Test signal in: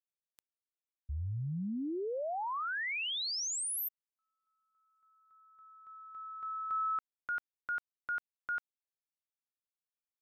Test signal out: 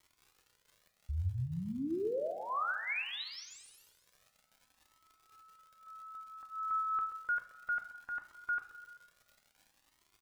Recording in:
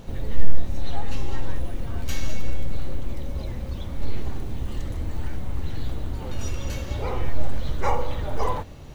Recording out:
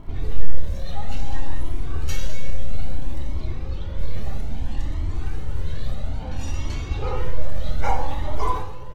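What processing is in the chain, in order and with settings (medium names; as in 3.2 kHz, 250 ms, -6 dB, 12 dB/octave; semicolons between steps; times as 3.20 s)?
level-controlled noise filter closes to 1.8 kHz, open at -18 dBFS; in parallel at -10 dB: hard clipper -15 dBFS; on the sum: crackle 130 per s -48 dBFS; on a send: feedback delay 129 ms, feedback 55%, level -14 dB; on the sum: two-slope reverb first 0.57 s, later 1.5 s, from -15 dB, DRR 5.5 dB; Shepard-style flanger rising 0.6 Hz; trim +1.5 dB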